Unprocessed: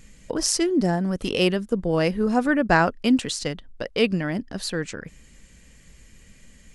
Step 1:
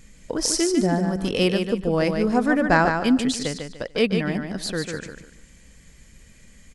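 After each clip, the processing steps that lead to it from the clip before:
notch filter 2,800 Hz, Q 15
on a send: repeating echo 147 ms, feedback 28%, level −6 dB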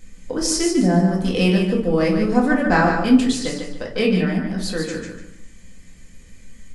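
rectangular room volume 220 cubic metres, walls furnished, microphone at 2 metres
level −2 dB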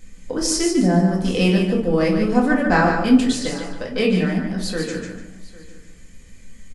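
single-tap delay 802 ms −21 dB

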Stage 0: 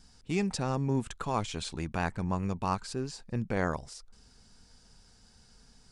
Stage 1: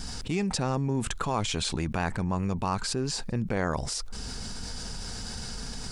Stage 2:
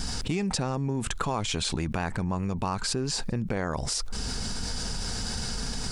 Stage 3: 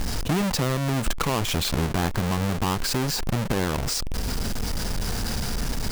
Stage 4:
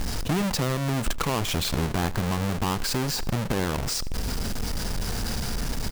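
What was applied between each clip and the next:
envelope flattener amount 70%
downward compressor 4 to 1, threshold −31 dBFS, peak gain reduction 8 dB; level +5.5 dB
each half-wave held at its own peak
repeating echo 79 ms, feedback 42%, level −20 dB; level −1.5 dB

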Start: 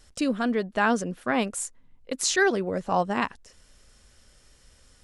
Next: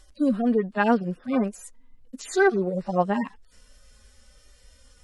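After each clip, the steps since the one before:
harmonic-percussive split with one part muted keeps harmonic
level +4 dB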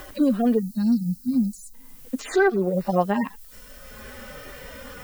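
background noise violet −55 dBFS
gain on a spectral selection 0:00.59–0:01.74, 270–3,800 Hz −30 dB
multiband upward and downward compressor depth 70%
level +3 dB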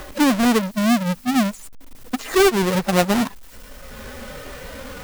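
each half-wave held at its own peak

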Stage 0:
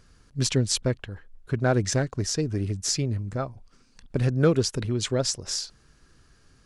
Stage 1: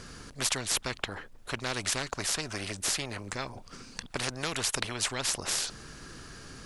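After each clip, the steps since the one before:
every bin compressed towards the loudest bin 4 to 1
level −2.5 dB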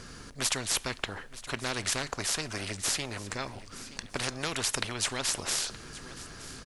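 repeating echo 921 ms, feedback 33%, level −17 dB
convolution reverb, pre-delay 3 ms, DRR 18 dB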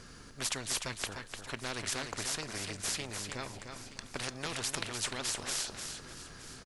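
repeating echo 300 ms, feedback 26%, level −6.5 dB
level −5.5 dB

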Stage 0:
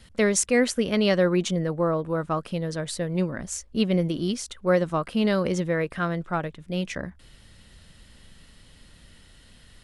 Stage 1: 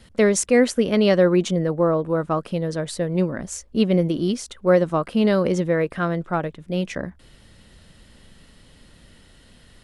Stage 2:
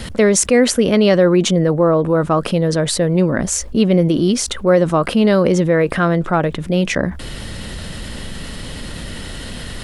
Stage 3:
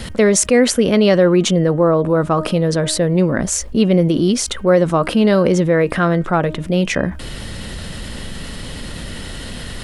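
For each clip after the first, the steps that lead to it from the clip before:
parametric band 400 Hz +5.5 dB 2.9 octaves
envelope flattener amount 50%; level +3 dB
hum removal 311.3 Hz, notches 10

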